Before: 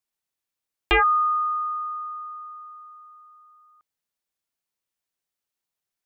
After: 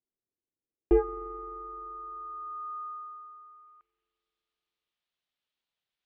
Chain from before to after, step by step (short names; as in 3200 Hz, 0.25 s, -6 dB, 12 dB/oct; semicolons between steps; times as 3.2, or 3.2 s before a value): low-pass sweep 380 Hz -> 3500 Hz, 1.2–4.25; spring tank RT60 3.4 s, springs 43 ms, chirp 40 ms, DRR 15.5 dB; gain -2 dB